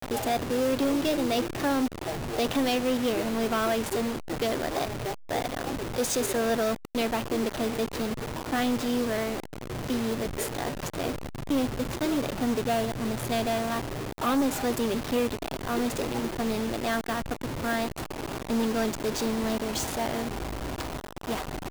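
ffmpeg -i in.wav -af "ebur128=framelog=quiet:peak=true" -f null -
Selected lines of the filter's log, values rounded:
Integrated loudness:
  I:         -29.0 LUFS
  Threshold: -39.0 LUFS
Loudness range:
  LRA:         3.0 LU
  Threshold: -49.0 LUFS
  LRA low:   -30.2 LUFS
  LRA high:  -27.2 LUFS
True peak:
  Peak:      -19.2 dBFS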